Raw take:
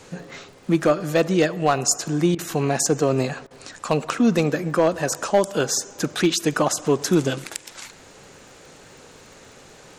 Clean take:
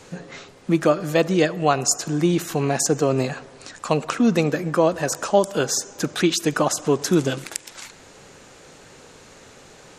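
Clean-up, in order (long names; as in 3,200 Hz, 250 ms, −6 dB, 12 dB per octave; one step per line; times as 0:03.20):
clipped peaks rebuilt −9.5 dBFS
click removal
repair the gap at 0:02.35/0:03.47, 36 ms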